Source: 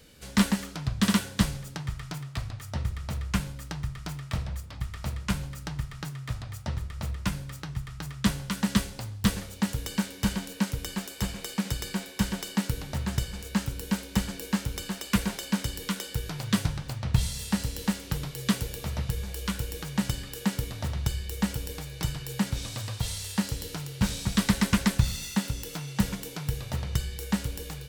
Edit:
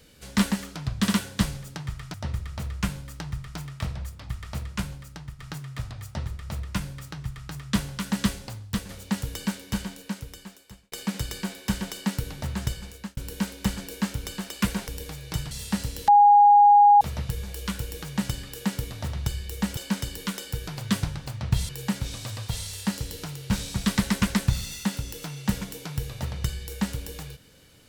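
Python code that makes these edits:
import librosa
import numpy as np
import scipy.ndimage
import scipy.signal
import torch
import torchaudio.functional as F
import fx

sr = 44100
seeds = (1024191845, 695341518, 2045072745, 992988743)

y = fx.edit(x, sr, fx.cut(start_s=2.14, length_s=0.51),
    fx.fade_out_to(start_s=5.08, length_s=0.82, floor_db=-8.5),
    fx.fade_out_to(start_s=8.97, length_s=0.43, floor_db=-8.0),
    fx.fade_out_span(start_s=9.93, length_s=1.5),
    fx.fade_out_span(start_s=13.12, length_s=0.56, curve='qsin'),
    fx.swap(start_s=15.39, length_s=1.92, other_s=21.57, other_length_s=0.63),
    fx.bleep(start_s=17.88, length_s=0.93, hz=821.0, db=-11.0), tone=tone)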